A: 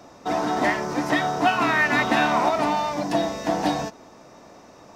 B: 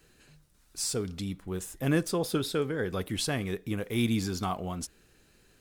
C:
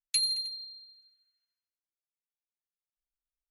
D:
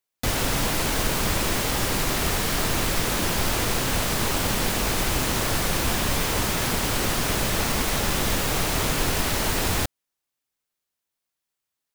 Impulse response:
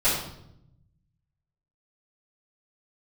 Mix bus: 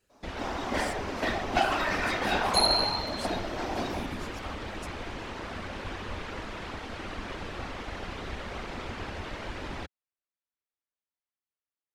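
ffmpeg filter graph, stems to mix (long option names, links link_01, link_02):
-filter_complex "[0:a]aeval=exprs='0.422*(cos(1*acos(clip(val(0)/0.422,-1,1)))-cos(1*PI/2))+0.106*(cos(3*acos(clip(val(0)/0.422,-1,1)))-cos(3*PI/2))':channel_layout=same,adelay=100,volume=0.5dB,asplit=2[link_01][link_02];[link_02]volume=-9.5dB[link_03];[1:a]acontrast=38,volume=-11.5dB,asplit=2[link_04][link_05];[2:a]adelay=2400,volume=-0.5dB,asplit=2[link_06][link_07];[link_07]volume=-9.5dB[link_08];[3:a]lowpass=2900,volume=-5dB[link_09];[link_05]apad=whole_len=223113[link_10];[link_01][link_10]sidechaincompress=threshold=-40dB:ratio=8:attack=16:release=390[link_11];[4:a]atrim=start_sample=2205[link_12];[link_03][link_08]amix=inputs=2:normalize=0[link_13];[link_13][link_12]afir=irnorm=-1:irlink=0[link_14];[link_11][link_04][link_06][link_09][link_14]amix=inputs=5:normalize=0,afftfilt=real='hypot(re,im)*cos(2*PI*random(0))':imag='hypot(re,im)*sin(2*PI*random(1))':win_size=512:overlap=0.75,equalizer=frequency=140:width=2.4:gain=-10"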